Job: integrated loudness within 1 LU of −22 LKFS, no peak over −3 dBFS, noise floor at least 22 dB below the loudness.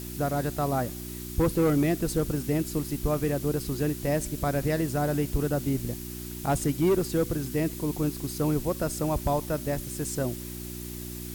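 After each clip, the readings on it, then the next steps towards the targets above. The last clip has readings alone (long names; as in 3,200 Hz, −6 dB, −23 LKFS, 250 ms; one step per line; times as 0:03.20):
mains hum 60 Hz; hum harmonics up to 360 Hz; level of the hum −37 dBFS; background noise floor −38 dBFS; target noise floor −51 dBFS; integrated loudness −28.5 LKFS; sample peak −15.0 dBFS; target loudness −22.0 LKFS
→ hum removal 60 Hz, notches 6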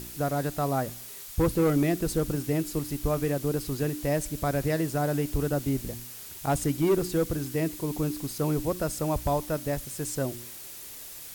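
mains hum none found; background noise floor −43 dBFS; target noise floor −51 dBFS
→ broadband denoise 8 dB, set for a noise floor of −43 dBFS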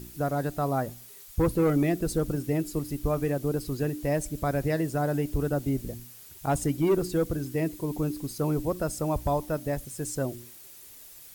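background noise floor −49 dBFS; target noise floor −51 dBFS
→ broadband denoise 6 dB, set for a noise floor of −49 dBFS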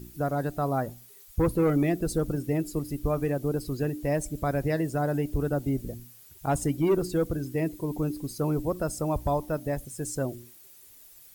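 background noise floor −52 dBFS; integrated loudness −29.0 LKFS; sample peak −15.0 dBFS; target loudness −22.0 LKFS
→ level +7 dB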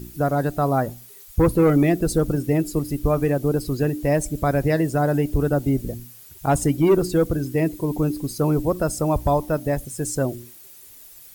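integrated loudness −22.0 LKFS; sample peak −8.0 dBFS; background noise floor −45 dBFS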